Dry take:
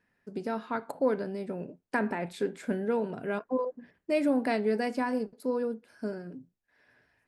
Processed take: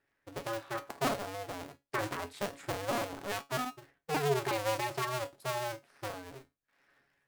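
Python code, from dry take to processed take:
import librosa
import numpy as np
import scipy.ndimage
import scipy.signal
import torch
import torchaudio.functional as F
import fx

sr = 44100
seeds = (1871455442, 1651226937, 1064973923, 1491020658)

y = fx.cycle_switch(x, sr, every=2, mode='inverted')
y = fx.low_shelf(y, sr, hz=100.0, db=-5.0)
y = fx.comb_fb(y, sr, f0_hz=140.0, decay_s=0.2, harmonics='all', damping=0.0, mix_pct=70)
y = F.gain(torch.from_numpy(y), 1.5).numpy()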